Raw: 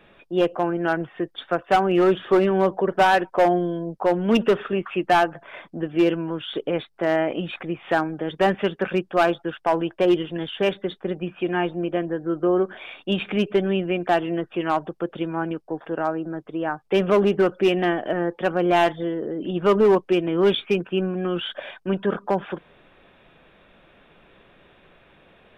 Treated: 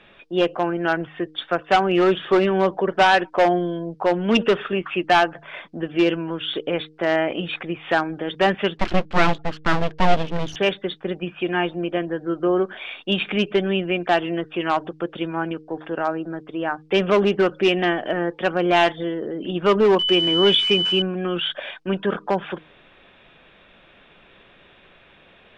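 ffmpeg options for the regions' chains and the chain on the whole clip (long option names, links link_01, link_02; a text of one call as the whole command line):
ffmpeg -i in.wav -filter_complex "[0:a]asettb=1/sr,asplit=3[link_01][link_02][link_03];[link_01]atrim=end=8.774[link_04];[link_02]atrim=start=8.77:end=10.56,asetpts=PTS-STARTPTS,afade=type=in:duration=0.004:curve=qsin,afade=type=out:start_time=1.786:duration=0.004:curve=qsin,aemphasis=mode=reproduction:type=riaa,aeval=exprs='abs(val(0))':channel_layout=same[link_05];[link_03]atrim=start=10.556[link_06];[link_04][link_05]acrossfade=duration=0.004:curve1=hsin:curve2=qsin[link_07];[link_07][link_06]acrossfade=duration=0.004:curve1=qsin:curve2=hsin,asettb=1/sr,asplit=3[link_08][link_09][link_10];[link_08]atrim=end=19.994[link_11];[link_09]atrim=start=19.99:end=21.02,asetpts=PTS-STARTPTS,afade=type=in:duration=0.004:curve=qsin,afade=type=out:start_time=1.026:duration=0.004:curve=qsin,aeval=exprs='val(0)+0.5*0.0158*sgn(val(0))':channel_layout=same,aeval=exprs='val(0)+0.0562*sin(2*PI*3000*n/s)':channel_layout=same[link_12];[link_10]atrim=start=21.016[link_13];[link_11][link_12]acrossfade=duration=0.004:curve1=hsin:curve2=qsin[link_14];[link_14][link_13]acrossfade=duration=0.004:curve1=qsin:curve2=hsin,lowpass=4500,highshelf=frequency=2500:gain=11.5,bandreject=frequency=155.4:width_type=h:width=4,bandreject=frequency=310.8:width_type=h:width=4,bandreject=frequency=466.2:width_type=h:width=4" out.wav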